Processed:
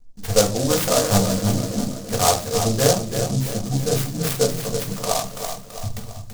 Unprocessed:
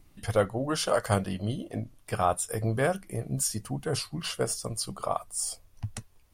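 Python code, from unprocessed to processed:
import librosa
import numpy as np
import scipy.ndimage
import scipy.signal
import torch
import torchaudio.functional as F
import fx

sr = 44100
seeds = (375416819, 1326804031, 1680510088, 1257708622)

y = fx.backlash(x, sr, play_db=-46.0)
y = scipy.signal.sosfilt(scipy.signal.butter(2, 4200.0, 'lowpass', fs=sr, output='sos'), y)
y = fx.peak_eq(y, sr, hz=3300.0, db=7.5, octaves=0.84)
y = fx.echo_feedback(y, sr, ms=332, feedback_pct=49, wet_db=-8.0)
y = fx.room_shoebox(y, sr, seeds[0], volume_m3=170.0, walls='furnished', distance_m=1.8)
y = fx.noise_mod_delay(y, sr, seeds[1], noise_hz=5700.0, depth_ms=0.13)
y = y * 10.0 ** (3.0 / 20.0)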